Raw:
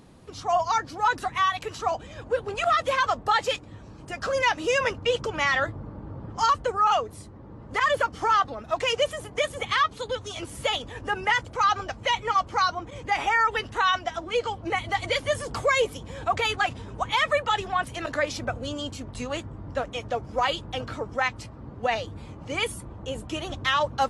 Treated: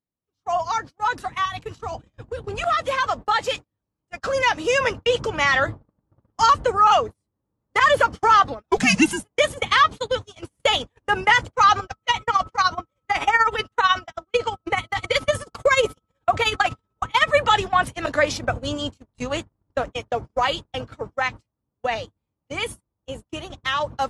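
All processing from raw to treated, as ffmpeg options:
-filter_complex "[0:a]asettb=1/sr,asplit=3[s0][s1][s2];[s0]atrim=end=1.454[s3];[s1]atrim=start=1.45:end=2.64,asetpts=PTS-STARTPTS,afade=t=in:d=0.004:c=qsin,afade=t=out:st=1.186:d=0.004:c=qsin,lowshelf=f=360:g=8,bandreject=f=590:w=11,acrossover=split=130|3000[s4][s5][s6];[s5]acompressor=threshold=0.0501:ratio=10:attack=3.2:release=140:knee=2.83:detection=peak[s7];[s4][s7][s6]amix=inputs=3:normalize=0[s8];[s2]atrim=start=2.636[s9];[s3][s8]acrossfade=d=0.004:c1=hsin:c2=qsin[s10];[s10][s9]acrossfade=d=0.004:c1=qsin:c2=hsin,asettb=1/sr,asplit=3[s11][s12][s13];[s11]atrim=end=8.704[s14];[s12]atrim=start=8.7:end=9.23,asetpts=PTS-STARTPTS,afade=t=in:d=0.004:c=qsin,afade=t=out:st=0.526:d=0.004:c=qsin,afreqshift=-270,highshelf=f=6100:g=10.5[s15];[s13]atrim=start=9.226[s16];[s14][s15]acrossfade=d=0.004:c1=hsin:c2=qsin[s17];[s17][s16]acrossfade=d=0.004:c1=qsin:c2=hsin,asettb=1/sr,asplit=3[s18][s19][s20];[s18]atrim=end=11.794[s21];[s19]atrim=start=11.79:end=17.35,asetpts=PTS-STARTPTS,afade=t=in:d=0.004:c=qsin,afade=t=out:st=5.556:d=0.004:c=qsin,tremolo=f=16:d=0.71,aeval=exprs='val(0)+0.00501*sin(2*PI*1300*n/s)':c=same[s22];[s20]atrim=start=17.346[s23];[s21][s22]acrossfade=d=0.004:c1=hsin:c2=qsin[s24];[s24][s23]acrossfade=d=0.004:c1=qsin:c2=hsin,agate=range=0.00891:threshold=0.0251:ratio=16:detection=peak,dynaudnorm=f=320:g=31:m=2.51"

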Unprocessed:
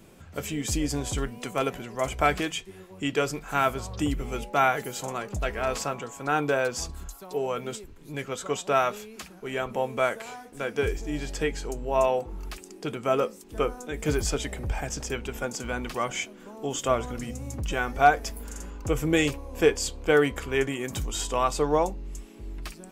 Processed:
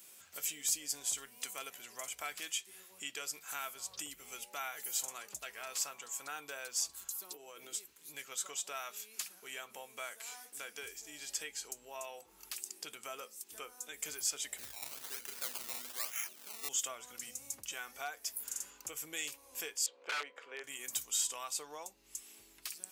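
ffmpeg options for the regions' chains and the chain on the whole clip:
-filter_complex "[0:a]asettb=1/sr,asplit=3[s0][s1][s2];[s0]atrim=end=7.144[s3];[s1]atrim=start=7.14:end=7.77,asetpts=PTS-STARTPTS,afade=t=in:d=0.004:c=qsin,afade=t=out:st=0.626:d=0.004:c=qsin,equalizer=f=320:w=2.4:g=14,aecho=1:1:6.2:0.32,atrim=end_sample=27783,acompressor=threshold=0.0282:ratio=5:attack=3.2:release=140:knee=1:detection=peak[s4];[s2]atrim=start=7.766[s5];[s3][s4]acrossfade=d=0.004:c1=hsin:c2=qsin[s6];[s6][s5]acrossfade=d=0.004:c1=qsin:c2=hsin,asettb=1/sr,asplit=3[s7][s8][s9];[s7]atrim=end=14.584[s10];[s8]atrim=start=14.58:end=16.69,asetpts=PTS-STARTPTS,afade=t=in:d=0.004:c=qsin,afade=t=out:st=2.106:d=0.004:c=qsin,tremolo=f=1:d=0.5,asplit=2[s11][s12];[s12]adelay=37,volume=0.562[s13];[s11][s13]amix=inputs=2:normalize=0,atrim=end_sample=93051,acrusher=samples=19:mix=1:aa=0.000001:lfo=1:lforange=19:lforate=1.1[s14];[s9]atrim=start=16.686[s15];[s10][s14]acrossfade=d=0.004:c1=hsin:c2=qsin[s16];[s16][s15]acrossfade=d=0.004:c1=qsin:c2=hsin,asettb=1/sr,asplit=3[s17][s18][s19];[s17]atrim=end=19.864[s20];[s18]atrim=start=19.86:end=20.64,asetpts=PTS-STARTPTS,afade=t=in:d=0.004:c=qsin,afade=t=out:st=0.776:d=0.004:c=qsin,equalizer=f=510:t=o:w=0.5:g=10.5,aeval=exprs='(mod(3.35*val(0)+1,2)-1)/3.35':c=same,highpass=340,lowpass=2100[s21];[s19]atrim=start=20.636[s22];[s20][s21]acrossfade=d=0.004:c1=hsin:c2=qsin[s23];[s23][s22]acrossfade=d=0.004:c1=qsin:c2=hsin,acompressor=threshold=0.0141:ratio=2,aderivative,volume=2"

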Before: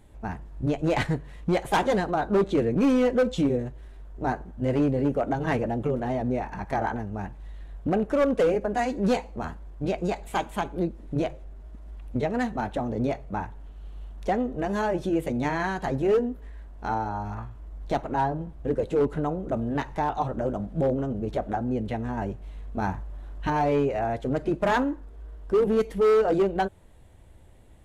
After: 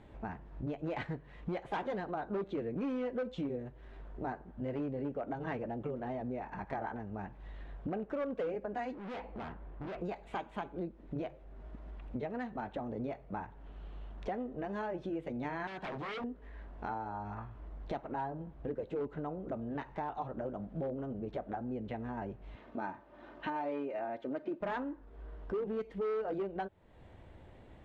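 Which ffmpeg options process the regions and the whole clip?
-filter_complex "[0:a]asettb=1/sr,asplit=3[s0][s1][s2];[s0]atrim=end=8.944[s3];[s1]atrim=start=8.94:end=10.01,asetpts=PTS-STARTPTS,afade=t=in:d=0.004:c=qsin,afade=t=out:st=1.066:d=0.004:c=qsin,lowpass=3000,volume=59.6,asoftclip=hard,volume=0.0168[s4];[s2]atrim=start=10.006[s5];[s3][s4]acrossfade=d=0.004:c1=hsin:c2=qsin[s6];[s6][s5]acrossfade=d=0.004:c1=qsin:c2=hsin,asettb=1/sr,asplit=3[s7][s8][s9];[s7]atrim=end=15.674[s10];[s8]atrim=start=15.67:end=16.24,asetpts=PTS-STARTPTS,afade=t=in:d=0.004:c=qsin,afade=t=out:st=0.566:d=0.004:c=qsin,highpass=f=100:p=1,bandreject=f=490:w=13,aeval=exprs='0.0376*(abs(mod(val(0)/0.0376+3,4)-2)-1)':c=same[s11];[s9]atrim=start=16.236[s12];[s10][s11]acrossfade=d=0.004:c1=hsin:c2=qsin[s13];[s13][s12]acrossfade=d=0.004:c1=qsin:c2=hsin,asettb=1/sr,asplit=3[s14][s15][s16];[s14]atrim=end=22.554[s17];[s15]atrim=start=22.55:end=24.61,asetpts=PTS-STARTPTS,afade=t=in:d=0.004:c=qsin,afade=t=out:st=2.056:d=0.004:c=qsin,highpass=210,lowpass=6600,aecho=1:1:3.3:0.44,atrim=end_sample=90846[s18];[s16]atrim=start=24.606[s19];[s17][s18]acrossfade=d=0.004:c1=hsin:c2=qsin[s20];[s20][s19]acrossfade=d=0.004:c1=qsin:c2=hsin,lowpass=3000,lowshelf=f=83:g=-11,acompressor=threshold=0.00501:ratio=2.5,volume=1.41"

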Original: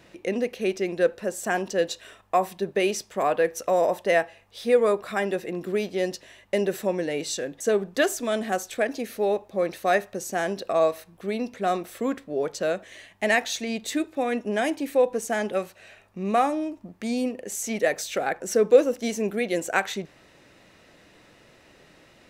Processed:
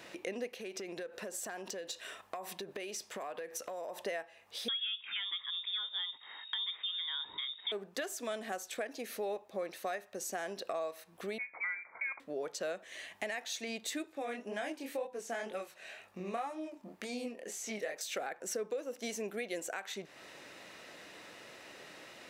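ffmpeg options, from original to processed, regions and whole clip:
-filter_complex "[0:a]asettb=1/sr,asplit=3[s0][s1][s2];[s0]atrim=end=0.604[s3];[s1]atrim=start=0.6:end=4.03,asetpts=PTS-STARTPTS,afade=t=in:d=0.004:c=qsin,afade=t=out:st=3.426:d=0.004:c=qsin,acompressor=threshold=0.0251:ratio=16:attack=3.2:release=140:knee=1:detection=peak,asoftclip=type=hard:threshold=0.0355[s4];[s2]atrim=start=4.026[s5];[s3][s4]acrossfade=d=0.004:c1=hsin:c2=qsin[s6];[s6][s5]acrossfade=d=0.004:c1=qsin:c2=hsin,asettb=1/sr,asplit=3[s7][s8][s9];[s7]atrim=end=4.684[s10];[s8]atrim=start=4.68:end=7.72,asetpts=PTS-STARTPTS,afade=t=in:d=0.004:c=qsin,afade=t=out:st=3.036:d=0.004:c=qsin,asubboost=boost=9.5:cutoff=150,lowpass=f=3200:t=q:w=0.5098,lowpass=f=3200:t=q:w=0.6013,lowpass=f=3200:t=q:w=0.9,lowpass=f=3200:t=q:w=2.563,afreqshift=-3800[s11];[s9]atrim=start=7.716[s12];[s10][s11]acrossfade=d=0.004:c1=hsin:c2=qsin[s13];[s13][s12]acrossfade=d=0.004:c1=qsin:c2=hsin,asettb=1/sr,asplit=3[s14][s15][s16];[s14]atrim=end=11.384[s17];[s15]atrim=start=11.38:end=12.2,asetpts=PTS-STARTPTS,afade=t=in:d=0.004:c=qsin,afade=t=out:st=0.816:d=0.004:c=qsin,highpass=f=360:w=0.5412,highpass=f=360:w=1.3066,lowpass=f=2300:t=q:w=0.5098,lowpass=f=2300:t=q:w=0.6013,lowpass=f=2300:t=q:w=0.9,lowpass=f=2300:t=q:w=2.563,afreqshift=-2700[s18];[s16]atrim=start=12.196[s19];[s17][s18]acrossfade=d=0.004:c1=hsin:c2=qsin[s20];[s20][s19]acrossfade=d=0.004:c1=qsin:c2=hsin,asettb=1/sr,asplit=3[s21][s22][s23];[s21]atrim=end=14.124[s24];[s22]atrim=start=14.12:end=18.01,asetpts=PTS-STARTPTS,afade=t=in:d=0.004:c=qsin,afade=t=out:st=3.886:d=0.004:c=qsin,acrossover=split=5600[s25][s26];[s26]acompressor=threshold=0.00708:ratio=4:attack=1:release=60[s27];[s25][s27]amix=inputs=2:normalize=0,flanger=delay=19.5:depth=6.8:speed=2[s28];[s23]atrim=start=18.006[s29];[s24][s28]acrossfade=d=0.004:c1=hsin:c2=qsin[s30];[s30][s29]acrossfade=d=0.004:c1=qsin:c2=hsin,highpass=f=510:p=1,alimiter=limit=0.126:level=0:latency=1:release=332,acompressor=threshold=0.00447:ratio=2.5,volume=1.68"

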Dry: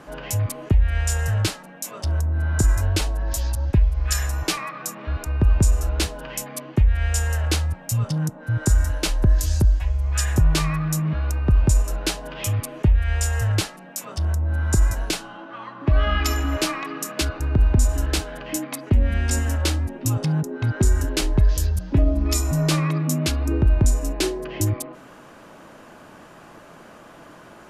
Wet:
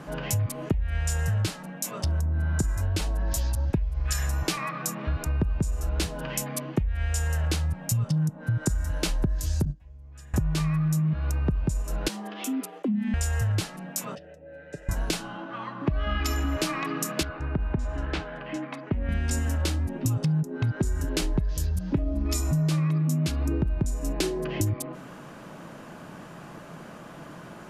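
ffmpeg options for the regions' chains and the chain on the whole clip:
-filter_complex "[0:a]asettb=1/sr,asplit=3[s0][s1][s2];[s0]atrim=end=9.654[s3];[s1]atrim=start=9.65:end=10.34,asetpts=PTS-STARTPTS,afade=t=in:d=0.004:c=qsin,afade=t=out:st=0.686:d=0.004:c=qsin,agate=range=0.0398:threshold=0.224:ratio=16:release=100:detection=peak,equalizer=f=240:w=0.61:g=13.5[s4];[s2]atrim=start=10.336[s5];[s3][s4]acrossfade=d=0.004:c1=hsin:c2=qsin[s6];[s6][s5]acrossfade=d=0.004:c1=qsin:c2=hsin,asettb=1/sr,asplit=3[s7][s8][s9];[s7]atrim=end=12.084[s10];[s8]atrim=start=12.08:end=13.14,asetpts=PTS-STARTPTS,afade=t=in:d=0.004:c=qsin,afade=t=out:st=1.056:d=0.004:c=qsin,agate=range=0.0224:threshold=0.0282:ratio=3:release=100:detection=peak,acompressor=threshold=0.0178:ratio=2:attack=3.2:release=140:knee=1:detection=peak,afreqshift=160[s11];[s9]atrim=start=13.136[s12];[s10][s11]acrossfade=d=0.004:c1=hsin:c2=qsin[s13];[s13][s12]acrossfade=d=0.004:c1=qsin:c2=hsin,asettb=1/sr,asplit=3[s14][s15][s16];[s14]atrim=end=14.154[s17];[s15]atrim=start=14.15:end=14.89,asetpts=PTS-STARTPTS,afade=t=in:d=0.004:c=qsin,afade=t=out:st=0.736:d=0.004:c=qsin,acompressor=mode=upward:threshold=0.0891:ratio=2.5:attack=3.2:release=140:knee=2.83:detection=peak,asplit=3[s18][s19][s20];[s18]bandpass=f=530:t=q:w=8,volume=1[s21];[s19]bandpass=f=1840:t=q:w=8,volume=0.501[s22];[s20]bandpass=f=2480:t=q:w=8,volume=0.355[s23];[s21][s22][s23]amix=inputs=3:normalize=0,aecho=1:1:6.9:0.55,atrim=end_sample=32634[s24];[s16]atrim=start=14.886[s25];[s17][s24]acrossfade=d=0.004:c1=hsin:c2=qsin[s26];[s26][s25]acrossfade=d=0.004:c1=qsin:c2=hsin,asettb=1/sr,asplit=3[s27][s28][s29];[s27]atrim=end=17.234[s30];[s28]atrim=start=17.23:end=19.09,asetpts=PTS-STARTPTS,afade=t=in:d=0.004:c=qsin,afade=t=out:st=1.856:d=0.004:c=qsin,lowpass=2300,lowshelf=f=470:g=-9[s31];[s29]atrim=start=19.086[s32];[s30][s31]acrossfade=d=0.004:c1=hsin:c2=qsin[s33];[s33][s32]acrossfade=d=0.004:c1=qsin:c2=hsin,equalizer=f=160:w=1.6:g=9,acompressor=threshold=0.0708:ratio=6"

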